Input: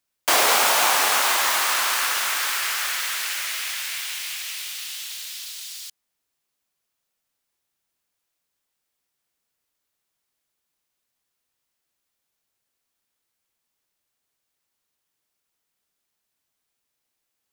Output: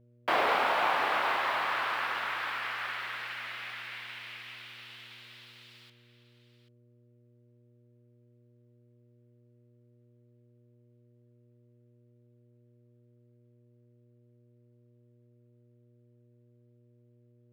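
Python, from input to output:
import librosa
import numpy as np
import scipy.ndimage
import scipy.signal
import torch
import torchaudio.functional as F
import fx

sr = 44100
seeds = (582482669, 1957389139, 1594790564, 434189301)

y = fx.dmg_buzz(x, sr, base_hz=120.0, harmonics=5, level_db=-58.0, tilt_db=-6, odd_only=False)
y = fx.air_absorb(y, sr, metres=460.0)
y = y + 10.0 ** (-13.5 / 20.0) * np.pad(y, (int(786 * sr / 1000.0), 0))[:len(y)]
y = F.gain(torch.from_numpy(y), -3.5).numpy()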